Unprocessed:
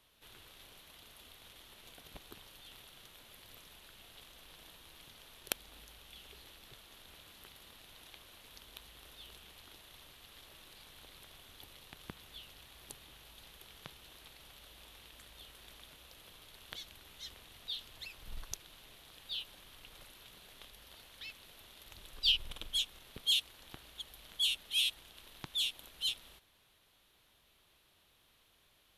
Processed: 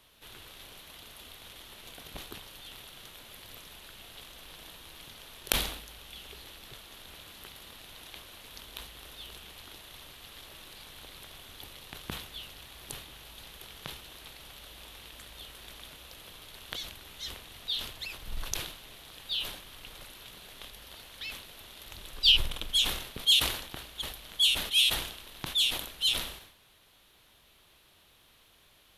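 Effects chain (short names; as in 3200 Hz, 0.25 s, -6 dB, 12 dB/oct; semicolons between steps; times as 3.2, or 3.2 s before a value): sustainer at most 78 dB/s; gain +7.5 dB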